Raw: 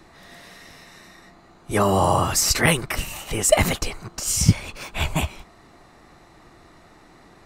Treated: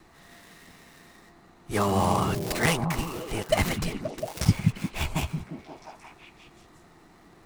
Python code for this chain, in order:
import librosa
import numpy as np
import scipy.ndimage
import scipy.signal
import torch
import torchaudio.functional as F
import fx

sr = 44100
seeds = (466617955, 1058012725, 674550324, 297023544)

p1 = fx.dead_time(x, sr, dead_ms=0.084)
p2 = fx.peak_eq(p1, sr, hz=580.0, db=-4.5, octaves=0.22)
p3 = p2 + fx.echo_stepped(p2, sr, ms=176, hz=160.0, octaves=0.7, feedback_pct=70, wet_db=0.0, dry=0)
y = p3 * 10.0 ** (-5.0 / 20.0)